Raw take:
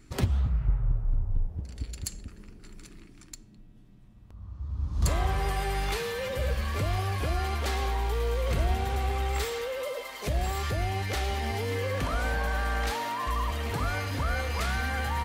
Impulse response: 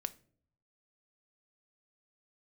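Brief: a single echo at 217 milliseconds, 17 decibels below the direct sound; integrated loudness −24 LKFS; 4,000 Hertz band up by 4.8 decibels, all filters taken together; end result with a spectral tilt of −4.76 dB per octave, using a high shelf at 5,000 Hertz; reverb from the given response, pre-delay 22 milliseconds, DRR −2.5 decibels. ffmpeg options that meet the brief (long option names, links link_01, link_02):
-filter_complex "[0:a]equalizer=frequency=4000:width_type=o:gain=4.5,highshelf=frequency=5000:gain=3.5,aecho=1:1:217:0.141,asplit=2[link_01][link_02];[1:a]atrim=start_sample=2205,adelay=22[link_03];[link_02][link_03]afir=irnorm=-1:irlink=0,volume=3.5dB[link_04];[link_01][link_04]amix=inputs=2:normalize=0,volume=1.5dB"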